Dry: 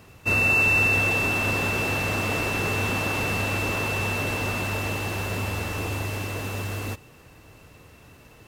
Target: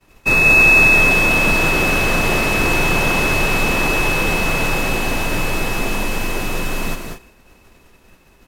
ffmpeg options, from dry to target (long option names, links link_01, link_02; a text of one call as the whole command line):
ffmpeg -i in.wav -af "agate=range=-33dB:threshold=-42dB:ratio=3:detection=peak,afreqshift=-79,aecho=1:1:192.4|227.4:0.501|0.251,volume=8dB" out.wav